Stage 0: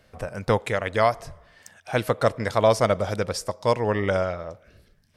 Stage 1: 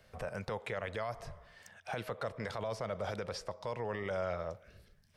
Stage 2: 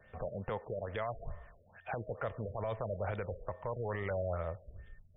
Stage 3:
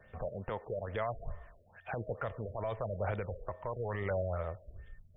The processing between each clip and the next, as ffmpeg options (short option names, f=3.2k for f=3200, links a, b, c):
-filter_complex "[0:a]acrossover=split=210|4500[a][b][c];[a]acompressor=threshold=-38dB:ratio=4[d];[b]acompressor=threshold=-24dB:ratio=4[e];[c]acompressor=threshold=-57dB:ratio=4[f];[d][e][f]amix=inputs=3:normalize=0,alimiter=limit=-23dB:level=0:latency=1:release=22,equalizer=f=290:t=o:w=0.43:g=-8,volume=-4dB"
-af "aeval=exprs='val(0)+0.000562*sin(2*PI*1800*n/s)':c=same,asubboost=boost=4.5:cutoff=93,afftfilt=real='re*lt(b*sr/1024,640*pow(3700/640,0.5+0.5*sin(2*PI*2.3*pts/sr)))':imag='im*lt(b*sr/1024,640*pow(3700/640,0.5+0.5*sin(2*PI*2.3*pts/sr)))':win_size=1024:overlap=0.75,volume=1dB"
-af "aphaser=in_gain=1:out_gain=1:delay=3.2:decay=0.24:speed=0.97:type=sinusoidal"